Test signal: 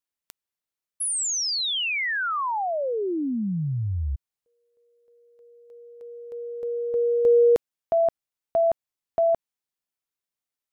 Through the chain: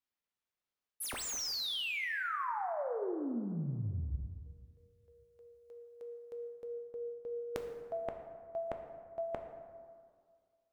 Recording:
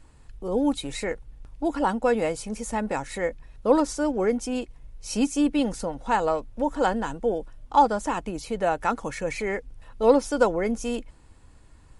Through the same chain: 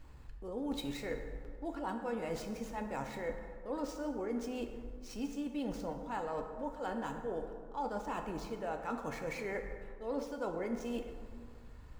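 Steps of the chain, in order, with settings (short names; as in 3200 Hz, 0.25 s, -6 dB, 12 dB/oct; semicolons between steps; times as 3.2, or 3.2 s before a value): median filter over 5 samples; reverse; compressor 6:1, threshold -35 dBFS; reverse; plate-style reverb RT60 2 s, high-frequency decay 0.45×, DRR 4 dB; gain -2.5 dB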